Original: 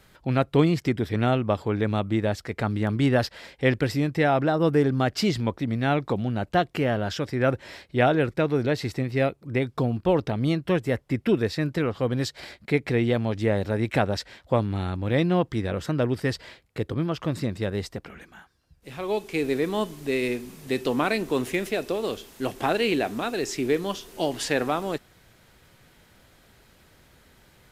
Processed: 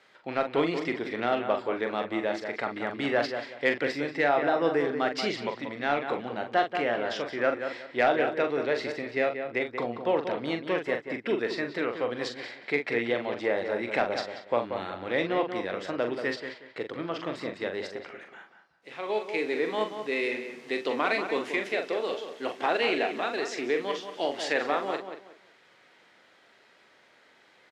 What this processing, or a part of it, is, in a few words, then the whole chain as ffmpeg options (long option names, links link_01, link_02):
intercom: -filter_complex "[0:a]highpass=410,lowpass=4600,equalizer=frequency=2000:width_type=o:width=0.34:gain=4,asplit=2[link_01][link_02];[link_02]adelay=184,lowpass=frequency=2500:poles=1,volume=-8dB,asplit=2[link_03][link_04];[link_04]adelay=184,lowpass=frequency=2500:poles=1,volume=0.26,asplit=2[link_05][link_06];[link_06]adelay=184,lowpass=frequency=2500:poles=1,volume=0.26[link_07];[link_01][link_03][link_05][link_07]amix=inputs=4:normalize=0,asoftclip=type=tanh:threshold=-9.5dB,asplit=2[link_08][link_09];[link_09]adelay=42,volume=-7dB[link_10];[link_08][link_10]amix=inputs=2:normalize=0,volume=-1.5dB"